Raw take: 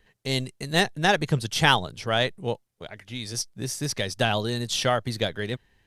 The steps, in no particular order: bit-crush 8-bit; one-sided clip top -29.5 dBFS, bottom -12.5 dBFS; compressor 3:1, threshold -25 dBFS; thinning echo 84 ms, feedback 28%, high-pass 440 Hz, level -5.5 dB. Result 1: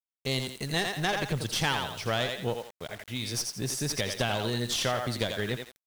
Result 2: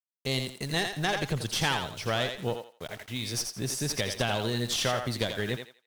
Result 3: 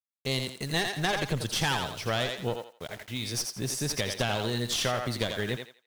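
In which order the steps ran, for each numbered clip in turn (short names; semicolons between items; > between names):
thinning echo > compressor > one-sided clip > bit-crush; bit-crush > compressor > one-sided clip > thinning echo; one-sided clip > bit-crush > thinning echo > compressor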